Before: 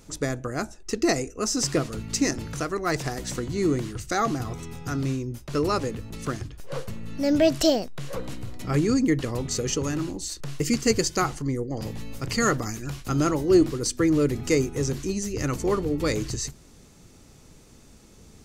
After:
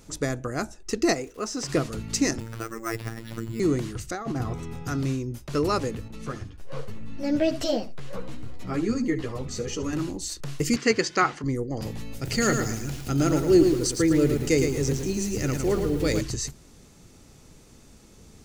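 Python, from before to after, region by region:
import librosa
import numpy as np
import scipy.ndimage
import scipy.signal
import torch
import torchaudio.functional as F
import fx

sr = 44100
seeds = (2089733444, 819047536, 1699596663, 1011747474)

y = fx.lowpass(x, sr, hz=2600.0, slope=6, at=(1.13, 1.68), fade=0.02)
y = fx.low_shelf(y, sr, hz=230.0, db=-10.5, at=(1.13, 1.68), fade=0.02)
y = fx.dmg_crackle(y, sr, seeds[0], per_s=390.0, level_db=-44.0, at=(1.13, 1.68), fade=0.02)
y = fx.chain(y, sr, fx.dynamic_eq(hz=680.0, q=1.1, threshold_db=-40.0, ratio=4.0, max_db=-7),
    fx.robotise(hz=113.0),
    fx.resample_bad(factor=6, down='filtered', up='hold'), at=(2.4, 3.6))
y = fx.chain(y, sr, fx.high_shelf(hz=2900.0, db=-9.0),
    fx.over_compress(threshold_db=-28.0, ratio=-0.5), at=(4.11, 4.85))
y = fx.chain(y, sr, fx.high_shelf(hz=5600.0, db=-8.5),
    fx.echo_single(ms=72, db=-14.5),
    fx.ensemble(), at=(6.08, 9.93))
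y = fx.chain(y, sr, fx.bandpass_edges(low_hz=200.0, high_hz=4900.0),
    fx.peak_eq(hz=1800.0, db=7.0, octaves=1.3), at=(10.76, 11.44))
y = fx.chain(y, sr, fx.peak_eq(hz=1100.0, db=-11.0, octaves=0.42),
    fx.echo_crushed(ms=110, feedback_pct=35, bits=7, wet_db=-5), at=(12.14, 16.21))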